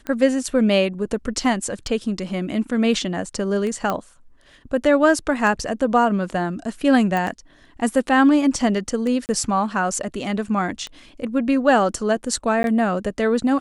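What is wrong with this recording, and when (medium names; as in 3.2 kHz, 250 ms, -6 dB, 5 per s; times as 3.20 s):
tick 33 1/3 rpm -16 dBFS
3.90 s: pop -10 dBFS
7.17 s: pop
9.26–9.29 s: dropout 29 ms
12.63–12.64 s: dropout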